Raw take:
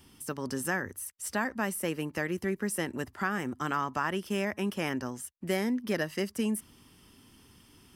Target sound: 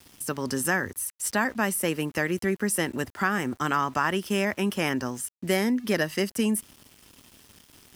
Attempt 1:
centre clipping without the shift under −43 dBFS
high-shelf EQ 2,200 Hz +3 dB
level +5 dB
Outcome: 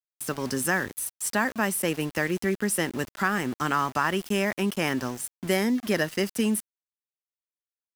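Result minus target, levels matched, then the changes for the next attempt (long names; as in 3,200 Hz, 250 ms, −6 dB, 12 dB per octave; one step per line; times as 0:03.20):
centre clipping without the shift: distortion +11 dB
change: centre clipping without the shift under −54 dBFS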